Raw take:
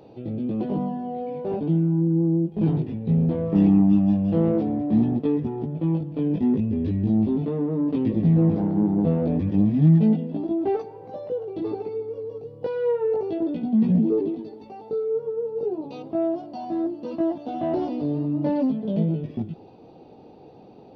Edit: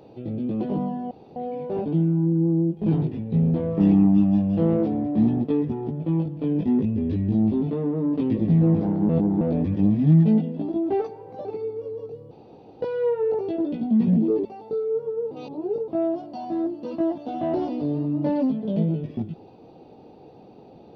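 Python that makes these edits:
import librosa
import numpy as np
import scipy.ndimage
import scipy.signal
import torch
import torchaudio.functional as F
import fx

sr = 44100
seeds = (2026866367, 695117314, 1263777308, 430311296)

y = fx.edit(x, sr, fx.insert_room_tone(at_s=1.11, length_s=0.25),
    fx.reverse_span(start_s=8.84, length_s=0.32),
    fx.cut(start_s=11.2, length_s=0.57),
    fx.insert_room_tone(at_s=12.63, length_s=0.5),
    fx.cut(start_s=14.27, length_s=0.38),
    fx.reverse_span(start_s=15.51, length_s=0.57), tone=tone)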